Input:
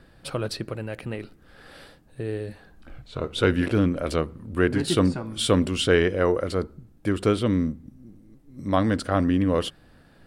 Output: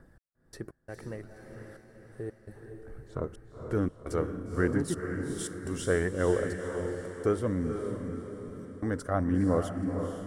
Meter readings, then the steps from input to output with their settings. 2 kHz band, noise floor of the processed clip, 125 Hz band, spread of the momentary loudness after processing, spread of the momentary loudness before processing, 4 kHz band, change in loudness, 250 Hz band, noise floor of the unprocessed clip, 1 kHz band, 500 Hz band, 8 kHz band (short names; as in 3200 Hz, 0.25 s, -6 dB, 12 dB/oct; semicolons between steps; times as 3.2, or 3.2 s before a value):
-8.0 dB, -59 dBFS, -6.5 dB, 19 LU, 13 LU, -19.0 dB, -7.0 dB, -7.5 dB, -55 dBFS, -8.0 dB, -6.0 dB, -6.0 dB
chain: step gate "x..x.xxxx" 85 bpm -60 dB; band shelf 3300 Hz -14 dB 1.2 oct; notch 2500 Hz, Q 25; phaser 0.63 Hz, delay 3.1 ms, feedback 34%; on a send: diffused feedback echo 0.477 s, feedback 49%, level -6 dB; on the sum: gain -7 dB